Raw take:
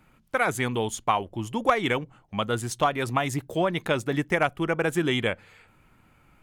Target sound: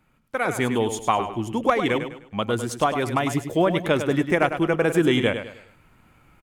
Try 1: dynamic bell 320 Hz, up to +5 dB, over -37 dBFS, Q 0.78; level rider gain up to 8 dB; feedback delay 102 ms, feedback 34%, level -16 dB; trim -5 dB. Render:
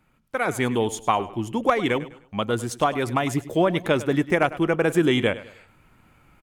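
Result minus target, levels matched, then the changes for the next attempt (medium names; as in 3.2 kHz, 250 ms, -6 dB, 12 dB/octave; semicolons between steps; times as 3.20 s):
echo-to-direct -7 dB
change: feedback delay 102 ms, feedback 34%, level -9 dB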